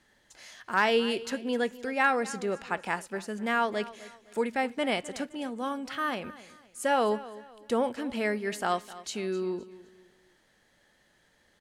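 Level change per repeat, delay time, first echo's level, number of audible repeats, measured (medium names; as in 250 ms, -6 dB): -9.5 dB, 257 ms, -17.5 dB, 2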